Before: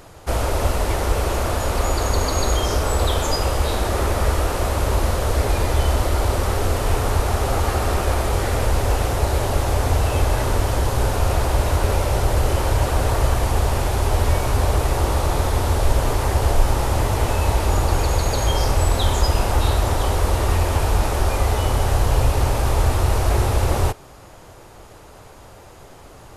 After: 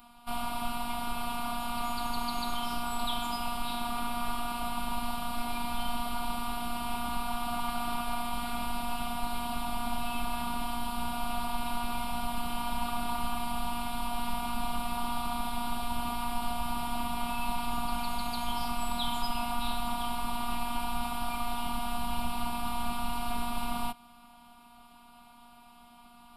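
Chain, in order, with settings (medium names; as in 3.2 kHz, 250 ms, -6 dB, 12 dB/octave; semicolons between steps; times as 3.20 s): high-pass 72 Hz 12 dB/octave; robot voice 238 Hz; static phaser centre 1.8 kHz, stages 6; trim -4 dB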